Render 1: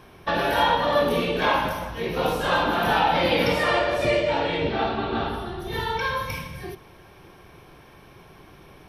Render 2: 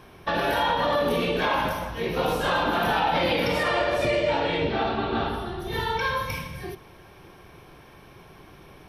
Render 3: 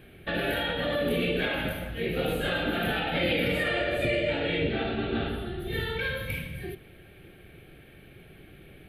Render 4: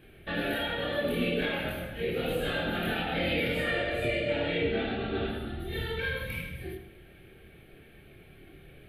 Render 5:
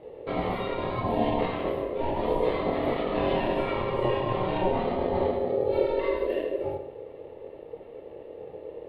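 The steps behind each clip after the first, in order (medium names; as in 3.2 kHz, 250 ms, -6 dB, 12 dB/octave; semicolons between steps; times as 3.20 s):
peak limiter -14.5 dBFS, peak gain reduction 5 dB
static phaser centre 2.4 kHz, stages 4
chorus voices 4, 0.28 Hz, delay 26 ms, depth 2.6 ms; on a send at -9 dB: reverberation RT60 0.70 s, pre-delay 57 ms
RIAA curve playback; ring modulator 470 Hz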